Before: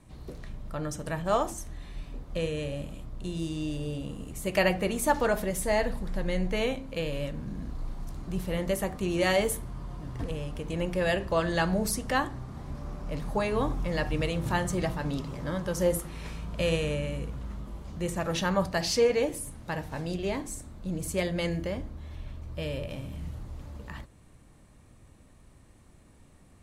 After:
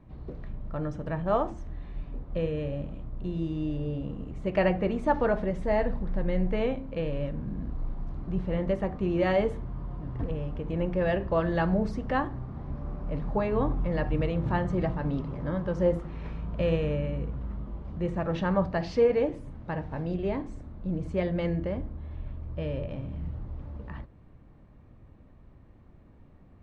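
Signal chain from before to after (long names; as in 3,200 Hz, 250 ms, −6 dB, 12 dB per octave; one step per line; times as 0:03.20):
head-to-tape spacing loss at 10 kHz 40 dB
level +3 dB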